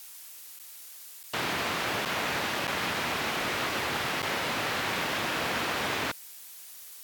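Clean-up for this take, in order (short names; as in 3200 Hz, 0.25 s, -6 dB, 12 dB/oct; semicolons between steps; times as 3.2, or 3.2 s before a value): interpolate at 0.59/1.23/2.05/2.67/4.22, 7.9 ms; denoiser 30 dB, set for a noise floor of -47 dBFS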